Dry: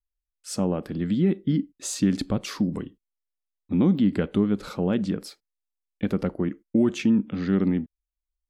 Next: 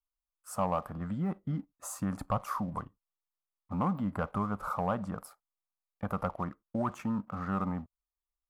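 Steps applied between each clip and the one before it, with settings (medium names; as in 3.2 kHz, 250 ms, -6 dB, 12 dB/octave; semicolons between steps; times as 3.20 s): FFT filter 110 Hz 0 dB, 370 Hz -16 dB, 650 Hz +7 dB, 1.2 kHz +14 dB, 1.7 kHz -5 dB, 3.8 kHz -21 dB, 12 kHz +3 dB; waveshaping leveller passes 1; trim -7 dB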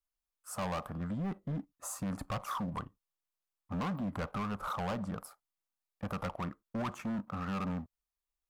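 overload inside the chain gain 32.5 dB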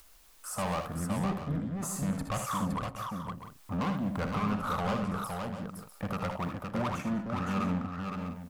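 upward compressor, threshold -39 dBFS; multi-tap echo 62/77/199/514/648/694 ms -10/-8.5/-19.5/-4.5/-12/-15 dB; trim +3 dB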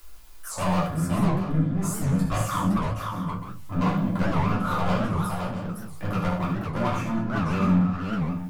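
simulated room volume 150 m³, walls furnished, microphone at 3.1 m; warped record 78 rpm, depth 250 cents; trim -1.5 dB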